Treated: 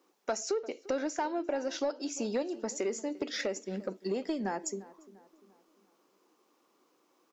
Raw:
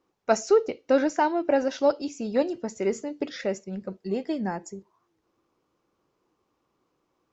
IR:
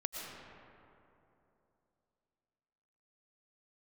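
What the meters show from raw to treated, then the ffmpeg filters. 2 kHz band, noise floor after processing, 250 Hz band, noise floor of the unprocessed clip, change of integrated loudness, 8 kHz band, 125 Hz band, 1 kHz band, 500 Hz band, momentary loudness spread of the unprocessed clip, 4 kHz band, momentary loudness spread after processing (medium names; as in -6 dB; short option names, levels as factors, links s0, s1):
-6.5 dB, -72 dBFS, -7.5 dB, -75 dBFS, -8.5 dB, no reading, -7.5 dB, -9.0 dB, -9.0 dB, 12 LU, -1.0 dB, 5 LU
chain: -filter_complex "[0:a]highpass=f=230:w=0.5412,highpass=f=230:w=1.3066,highshelf=f=5000:g=8.5,acompressor=threshold=0.0224:ratio=5,asoftclip=type=tanh:threshold=0.0562,asplit=2[s0][s1];[s1]adelay=347,lowpass=f=2000:p=1,volume=0.112,asplit=2[s2][s3];[s3]adelay=347,lowpass=f=2000:p=1,volume=0.47,asplit=2[s4][s5];[s5]adelay=347,lowpass=f=2000:p=1,volume=0.47,asplit=2[s6][s7];[s7]adelay=347,lowpass=f=2000:p=1,volume=0.47[s8];[s2][s4][s6][s8]amix=inputs=4:normalize=0[s9];[s0][s9]amix=inputs=2:normalize=0,volume=1.5"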